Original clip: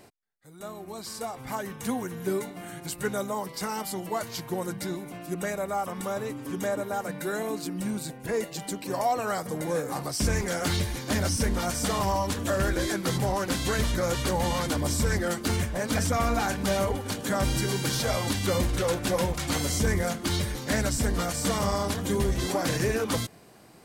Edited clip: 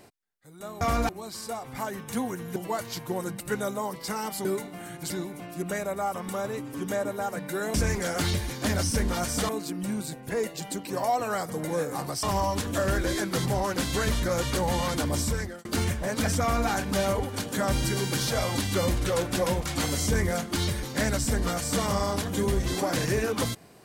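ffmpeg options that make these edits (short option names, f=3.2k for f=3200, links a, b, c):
-filter_complex "[0:a]asplit=11[a][b][c][d][e][f][g][h][i][j][k];[a]atrim=end=0.812[l];[b]atrim=start=16.128:end=16.412[m];[c]atrim=start=0.808:end=2.282[n];[d]atrim=start=3.978:end=4.822[o];[e]atrim=start=2.928:end=3.982[p];[f]atrim=start=2.278:end=2.932[q];[g]atrim=start=4.818:end=7.462[r];[h]atrim=start=10.198:end=11.952[s];[i]atrim=start=7.458:end=10.202[t];[j]atrim=start=11.948:end=15.37,asetpts=PTS-STARTPTS,afade=t=out:st=2.972:d=0.45[u];[k]atrim=start=15.37,asetpts=PTS-STARTPTS,afade=t=in:d=0.004:c=hsin[v];[l][m]acrossfade=d=0.004:c1=hsin:c2=hsin[w];[w][n]acrossfade=d=0.004:c1=hsin:c2=hsin[x];[x][o]acrossfade=d=0.004:c1=hsin:c2=hsin[y];[y][p]acrossfade=d=0.004:c1=hsin:c2=hsin[z];[z][q]acrossfade=d=0.004:c1=hsin:c2=hsin[aa];[aa][r]acrossfade=d=0.004:c1=hsin:c2=hsin[ab];[ab][s]acrossfade=d=0.004:c1=hsin:c2=hsin[ac];[ac][t]acrossfade=d=0.004:c1=hsin:c2=hsin[ad];[u][v]concat=n=2:v=0:a=1[ae];[ad][ae]acrossfade=d=0.004:c1=hsin:c2=hsin"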